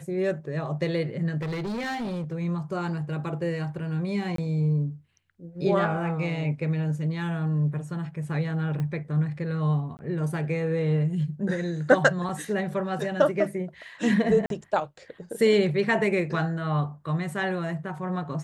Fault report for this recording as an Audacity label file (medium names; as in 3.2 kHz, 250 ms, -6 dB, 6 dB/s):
1.410000	2.340000	clipped -28 dBFS
4.360000	4.380000	dropout 23 ms
8.800000	8.800000	pop -21 dBFS
9.970000	9.990000	dropout 19 ms
12.290000	12.290000	dropout 3.5 ms
14.460000	14.500000	dropout 42 ms